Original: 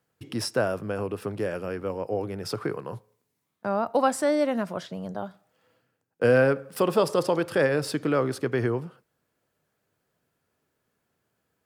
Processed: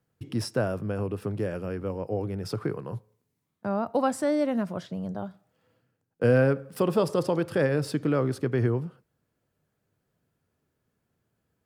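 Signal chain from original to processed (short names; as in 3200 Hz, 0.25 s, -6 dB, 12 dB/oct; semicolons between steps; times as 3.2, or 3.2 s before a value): low shelf 270 Hz +11.5 dB; gain -5 dB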